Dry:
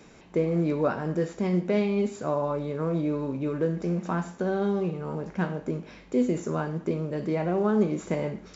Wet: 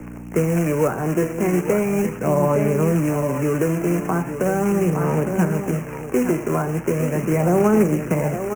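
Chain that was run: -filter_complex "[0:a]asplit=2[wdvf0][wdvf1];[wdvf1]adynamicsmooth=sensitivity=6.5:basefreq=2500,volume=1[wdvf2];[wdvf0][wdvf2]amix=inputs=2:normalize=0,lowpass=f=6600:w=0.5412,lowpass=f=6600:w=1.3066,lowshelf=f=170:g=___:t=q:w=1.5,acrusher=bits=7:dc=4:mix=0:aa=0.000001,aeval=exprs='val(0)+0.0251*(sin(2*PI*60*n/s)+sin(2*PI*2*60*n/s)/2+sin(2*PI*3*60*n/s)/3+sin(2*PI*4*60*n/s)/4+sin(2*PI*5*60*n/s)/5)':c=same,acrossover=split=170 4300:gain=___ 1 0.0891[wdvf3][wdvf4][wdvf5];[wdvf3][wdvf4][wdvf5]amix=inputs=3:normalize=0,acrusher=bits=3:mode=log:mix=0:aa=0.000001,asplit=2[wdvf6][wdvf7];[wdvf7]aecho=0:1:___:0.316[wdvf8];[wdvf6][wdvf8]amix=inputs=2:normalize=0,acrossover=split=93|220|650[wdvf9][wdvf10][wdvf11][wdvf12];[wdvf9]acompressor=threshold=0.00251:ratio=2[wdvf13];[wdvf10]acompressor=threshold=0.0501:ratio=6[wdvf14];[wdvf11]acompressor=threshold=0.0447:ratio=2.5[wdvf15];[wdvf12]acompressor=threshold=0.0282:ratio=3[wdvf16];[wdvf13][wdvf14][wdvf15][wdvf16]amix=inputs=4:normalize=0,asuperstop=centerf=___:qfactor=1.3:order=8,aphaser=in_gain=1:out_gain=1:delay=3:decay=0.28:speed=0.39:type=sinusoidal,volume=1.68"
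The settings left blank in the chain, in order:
7, 0.2, 859, 4000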